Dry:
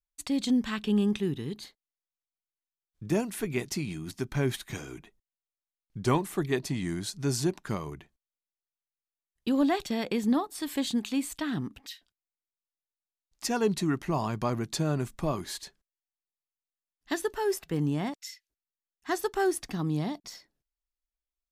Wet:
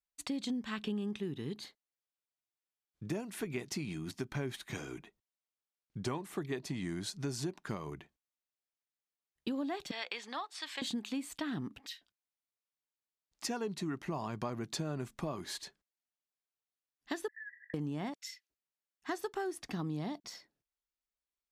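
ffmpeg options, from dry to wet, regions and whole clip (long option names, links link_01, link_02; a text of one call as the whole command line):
ffmpeg -i in.wav -filter_complex "[0:a]asettb=1/sr,asplit=3[link_01][link_02][link_03];[link_01]atrim=end=9.914[link_04];[link_02]atrim=start=9.91:end=10.82,asetpts=PTS-STARTPTS,afade=type=in:duration=0.004:curve=qsin,afade=type=out:start_time=0.906:duration=0.004:curve=qsin,highpass=740,lowpass=4700,tiltshelf=frequency=1200:gain=-6[link_05];[link_03]atrim=start=10.816[link_06];[link_04][link_05]acrossfade=duration=0.004:curve1=hsin:curve2=qsin[link_07];[link_07][link_06]acrossfade=duration=0.004:curve1=qsin:curve2=hsin,asettb=1/sr,asplit=3[link_08][link_09][link_10];[link_08]atrim=end=17.284[link_11];[link_09]atrim=start=17.28:end=17.74,asetpts=PTS-STARTPTS,afade=type=in:duration=0.004:curve=qsin,afade=type=out:start_time=0.456:duration=0.004:curve=qsin,aeval=exprs='val(0)+0.5*0.0188*sgn(val(0))':channel_layout=same,asuperpass=centerf=1800:order=12:qfactor=5.7,agate=range=-33dB:threshold=-57dB:ratio=3:release=100:detection=peak[link_12];[link_10]atrim=start=17.736[link_13];[link_11][link_12]acrossfade=duration=0.004:curve1=hsin:curve2=qsin[link_14];[link_14][link_13]acrossfade=duration=0.004:curve1=qsin:curve2=hsin,highpass=frequency=120:poles=1,highshelf=frequency=7900:gain=-8,acompressor=threshold=-33dB:ratio=6,volume=-1dB" out.wav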